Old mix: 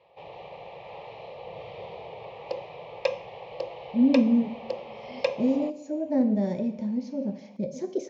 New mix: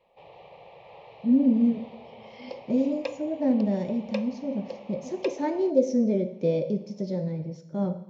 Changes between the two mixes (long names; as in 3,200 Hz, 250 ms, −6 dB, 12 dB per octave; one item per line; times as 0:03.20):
speech: entry −2.70 s
background −6.0 dB